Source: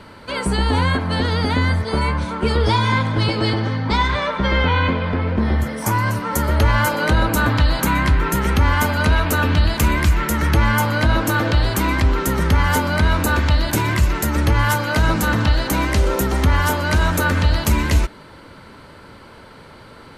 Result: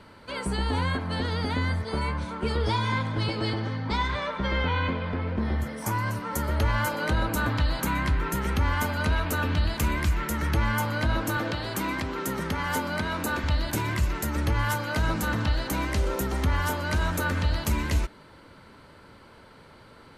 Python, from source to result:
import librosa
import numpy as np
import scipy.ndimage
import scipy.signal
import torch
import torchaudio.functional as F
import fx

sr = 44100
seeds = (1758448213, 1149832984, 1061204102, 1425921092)

y = fx.highpass(x, sr, hz=130.0, slope=12, at=(11.37, 13.44))
y = F.gain(torch.from_numpy(y), -9.0).numpy()